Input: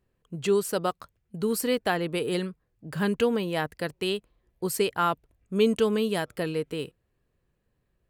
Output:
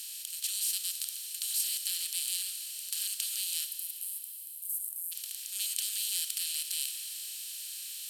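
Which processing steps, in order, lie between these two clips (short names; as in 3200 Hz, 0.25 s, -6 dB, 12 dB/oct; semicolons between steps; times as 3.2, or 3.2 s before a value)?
per-bin compression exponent 0.2; inverse Chebyshev high-pass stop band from 680 Hz, stop band 80 dB, from 3.64 s stop band from 2000 Hz, from 5.11 s stop band from 660 Hz; Schroeder reverb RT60 3.1 s, combs from 27 ms, DRR 7 dB; gain -2.5 dB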